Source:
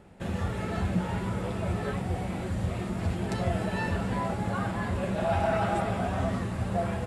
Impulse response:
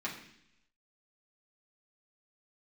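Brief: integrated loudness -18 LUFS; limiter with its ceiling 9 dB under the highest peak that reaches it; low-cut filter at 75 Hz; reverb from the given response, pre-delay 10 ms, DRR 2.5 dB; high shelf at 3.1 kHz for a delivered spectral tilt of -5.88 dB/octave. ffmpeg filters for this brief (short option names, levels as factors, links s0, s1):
-filter_complex "[0:a]highpass=75,highshelf=f=3100:g=5,alimiter=limit=0.0631:level=0:latency=1,asplit=2[s0][s1];[1:a]atrim=start_sample=2205,adelay=10[s2];[s1][s2]afir=irnorm=-1:irlink=0,volume=0.501[s3];[s0][s3]amix=inputs=2:normalize=0,volume=4.73"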